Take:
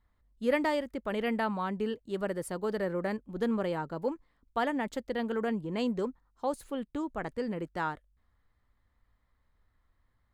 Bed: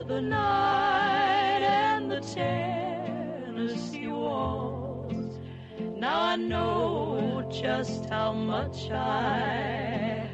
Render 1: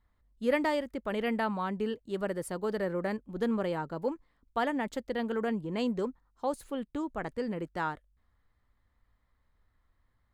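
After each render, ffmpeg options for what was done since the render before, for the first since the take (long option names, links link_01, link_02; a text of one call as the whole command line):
ffmpeg -i in.wav -af anull out.wav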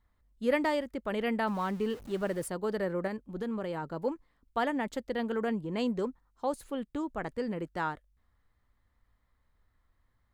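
ffmpeg -i in.wav -filter_complex "[0:a]asettb=1/sr,asplit=3[link_01][link_02][link_03];[link_01]atrim=end=1.474[link_04];[link_02]atrim=start=1.47:end=2.48,asetpts=PTS-STARTPTS,afade=type=in:duration=0.004:curve=qsin,afade=type=out:start_time=1.006:duration=0.004:curve=qsin,aeval=exprs='val(0)+0.5*0.00631*sgn(val(0))':channel_layout=same[link_05];[link_03]atrim=start=2.476[link_06];[link_04][link_05]acrossfade=duration=0.004:curve1=hsin:curve2=qsin[link_07];[link_07][link_06]acrossfade=duration=0.004:curve1=qsin:curve2=hsin,asettb=1/sr,asplit=3[link_08][link_09][link_10];[link_08]atrim=end=3.074[link_11];[link_09]atrim=start=3.07:end=3.94,asetpts=PTS-STARTPTS,afade=type=in:duration=0.004:curve=qsin,afade=type=out:start_time=0.866:duration=0.004:curve=qsin,acompressor=threshold=-31dB:ratio=4:attack=3.2:release=140:knee=1:detection=peak[link_12];[link_10]atrim=start=3.936[link_13];[link_11][link_12]acrossfade=duration=0.004:curve1=hsin:curve2=qsin[link_14];[link_14][link_13]acrossfade=duration=0.004:curve1=qsin:curve2=hsin" out.wav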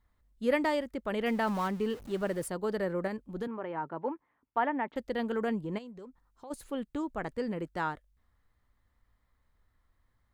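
ffmpeg -i in.wav -filter_complex "[0:a]asettb=1/sr,asplit=3[link_01][link_02][link_03];[link_01]atrim=end=1.264[link_04];[link_02]atrim=start=1.26:end=1.68,asetpts=PTS-STARTPTS,afade=type=in:duration=0.004:curve=qsin,afade=type=out:start_time=0.416:duration=0.004:curve=qsin,aeval=exprs='val(0)+0.5*0.00708*sgn(val(0))':channel_layout=same[link_05];[link_03]atrim=start=1.676[link_06];[link_04][link_05]acrossfade=duration=0.004:curve1=hsin:curve2=qsin[link_07];[link_07][link_06]acrossfade=duration=0.004:curve1=qsin:curve2=hsin,asettb=1/sr,asplit=3[link_08][link_09][link_10];[link_08]atrim=end=3.474[link_11];[link_09]atrim=start=3.47:end=4.96,asetpts=PTS-STARTPTS,afade=type=in:duration=0.004:curve=qsin,afade=type=out:start_time=1.486:duration=0.004:curve=qsin,highpass=170,equalizer=frequency=200:width_type=q:width=4:gain=-8,equalizer=frequency=500:width_type=q:width=4:gain=-4,equalizer=frequency=910:width_type=q:width=4:gain=5,lowpass=frequency=2500:width=0.5412,lowpass=frequency=2500:width=1.3066[link_12];[link_10]atrim=start=4.956[link_13];[link_11][link_12]acrossfade=duration=0.004:curve1=hsin:curve2=qsin[link_14];[link_14][link_13]acrossfade=duration=0.004:curve1=qsin:curve2=hsin,asplit=3[link_15][link_16][link_17];[link_15]afade=type=out:start_time=5.77:duration=0.02[link_18];[link_16]acompressor=threshold=-49dB:ratio=3:attack=3.2:release=140:knee=1:detection=peak,afade=type=in:start_time=5.77:duration=0.02,afade=type=out:start_time=6.5:duration=0.02[link_19];[link_17]afade=type=in:start_time=6.5:duration=0.02[link_20];[link_18][link_19][link_20]amix=inputs=3:normalize=0" out.wav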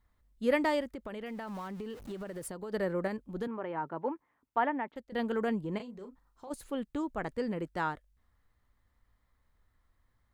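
ffmpeg -i in.wav -filter_complex "[0:a]asplit=3[link_01][link_02][link_03];[link_01]afade=type=out:start_time=0.91:duration=0.02[link_04];[link_02]acompressor=threshold=-36dB:ratio=16:attack=3.2:release=140:knee=1:detection=peak,afade=type=in:start_time=0.91:duration=0.02,afade=type=out:start_time=2.72:duration=0.02[link_05];[link_03]afade=type=in:start_time=2.72:duration=0.02[link_06];[link_04][link_05][link_06]amix=inputs=3:normalize=0,asettb=1/sr,asplit=3[link_07][link_08][link_09];[link_07]atrim=end=5.764[link_10];[link_08]atrim=start=5.76:end=6.5,asetpts=PTS-STARTPTS,afade=type=in:duration=0.004:curve=qsin,afade=type=out:start_time=0.736:duration=0.004:curve=qsin,asplit=2[link_11][link_12];[link_12]adelay=37,volume=-8dB[link_13];[link_11][link_13]amix=inputs=2:normalize=0,atrim=end_sample=32634[link_14];[link_09]atrim=start=6.496[link_15];[link_10][link_14]acrossfade=duration=0.004:curve1=hsin:curve2=qsin[link_16];[link_16][link_15]acrossfade=duration=0.004:curve1=qsin:curve2=hsin,asplit=2[link_17][link_18];[link_17]atrim=end=5.12,asetpts=PTS-STARTPTS,afade=type=out:start_time=4.67:duration=0.45:silence=0.11885[link_19];[link_18]atrim=start=5.12,asetpts=PTS-STARTPTS,afade=type=in:duration=0.004:curve=hsin:silence=0.11885[link_20];[link_19][link_20]concat=n=2:v=0:a=1" out.wav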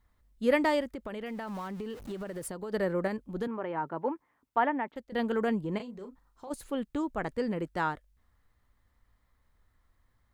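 ffmpeg -i in.wav -af "volume=2.5dB" out.wav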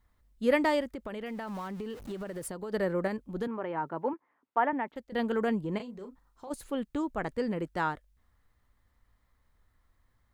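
ffmpeg -i in.wav -filter_complex "[0:a]asettb=1/sr,asplit=3[link_01][link_02][link_03];[link_01]atrim=end=4.134[link_04];[link_02]atrim=start=4.13:end=4.73,asetpts=PTS-STARTPTS,afade=type=in:duration=0.004:curve=qsin,afade=type=out:start_time=0.596:duration=0.004:curve=qsin,highpass=250,lowpass=2500[link_05];[link_03]atrim=start=4.726[link_06];[link_04][link_05]acrossfade=duration=0.004:curve1=hsin:curve2=qsin[link_07];[link_07][link_06]acrossfade=duration=0.004:curve1=qsin:curve2=hsin" out.wav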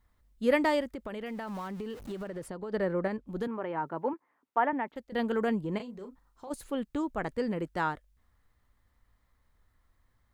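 ffmpeg -i in.wav -filter_complex "[0:a]asettb=1/sr,asplit=3[link_01][link_02][link_03];[link_01]atrim=end=2.274[link_04];[link_02]atrim=start=2.27:end=3.27,asetpts=PTS-STARTPTS,afade=type=in:duration=0.004:curve=qsin,afade=type=out:start_time=0.996:duration=0.004:curve=qsin,aemphasis=mode=reproduction:type=50kf[link_05];[link_03]atrim=start=3.266[link_06];[link_04][link_05]acrossfade=duration=0.004:curve1=hsin:curve2=qsin[link_07];[link_07][link_06]acrossfade=duration=0.004:curve1=qsin:curve2=hsin" out.wav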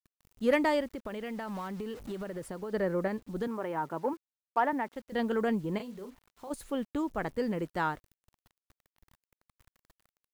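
ffmpeg -i in.wav -af "aeval=exprs='0.237*(cos(1*acos(clip(val(0)/0.237,-1,1)))-cos(1*PI/2))+0.0188*(cos(3*acos(clip(val(0)/0.237,-1,1)))-cos(3*PI/2))+0.0119*(cos(5*acos(clip(val(0)/0.237,-1,1)))-cos(5*PI/2))':channel_layout=same,acrusher=bits=9:mix=0:aa=0.000001" out.wav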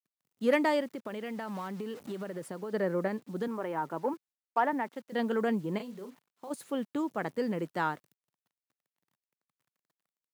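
ffmpeg -i in.wav -af "agate=range=-14dB:threshold=-57dB:ratio=16:detection=peak,highpass=frequency=140:width=0.5412,highpass=frequency=140:width=1.3066" out.wav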